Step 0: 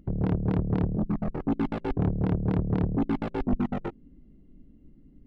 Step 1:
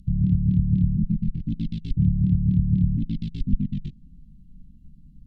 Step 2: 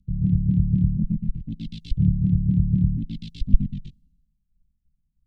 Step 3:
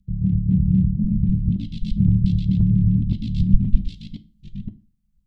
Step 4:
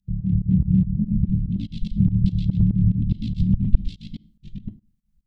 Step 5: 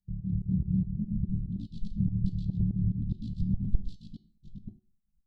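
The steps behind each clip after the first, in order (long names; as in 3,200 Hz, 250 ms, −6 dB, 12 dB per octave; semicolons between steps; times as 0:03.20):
elliptic band-stop filter 180–3,600 Hz, stop band 70 dB; treble cut that deepens with the level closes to 1,900 Hz, closed at −24.5 dBFS; level +7.5 dB
multiband upward and downward expander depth 100%
delay that plays each chunk backwards 521 ms, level −1 dB; on a send at −10.5 dB: convolution reverb RT60 0.30 s, pre-delay 5 ms
fake sidechain pumping 144 BPM, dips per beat 2, −21 dB, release 124 ms
Butterworth band-reject 1,900 Hz, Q 0.58; tuned comb filter 370 Hz, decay 0.4 s, harmonics all, mix 70%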